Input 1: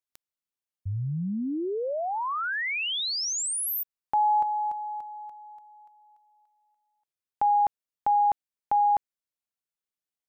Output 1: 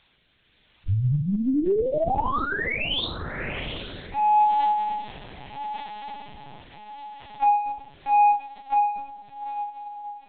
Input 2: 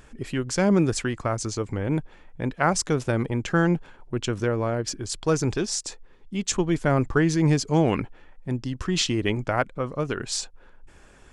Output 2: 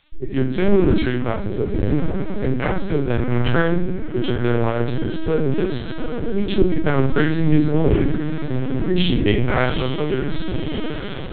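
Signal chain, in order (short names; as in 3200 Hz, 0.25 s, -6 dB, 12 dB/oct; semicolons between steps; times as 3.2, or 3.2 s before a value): Wiener smoothing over 15 samples; gate -47 dBFS, range -41 dB; diffused feedback echo 0.814 s, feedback 68%, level -11 dB; shoebox room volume 44 m³, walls mixed, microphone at 1.6 m; added noise white -53 dBFS; low shelf 240 Hz +4.5 dB; in parallel at -3.5 dB: overloaded stage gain 11.5 dB; on the sum: rotary speaker horn 0.8 Hz; high shelf 2500 Hz +10 dB; LPC vocoder at 8 kHz pitch kept; gain -8 dB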